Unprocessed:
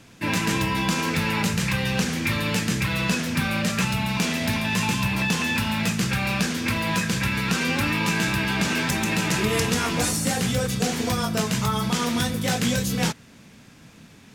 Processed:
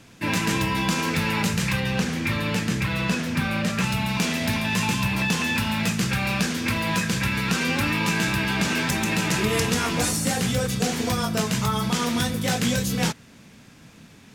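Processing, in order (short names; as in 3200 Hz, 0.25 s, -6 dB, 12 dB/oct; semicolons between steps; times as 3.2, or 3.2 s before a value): 1.8–3.84 high shelf 4000 Hz -6 dB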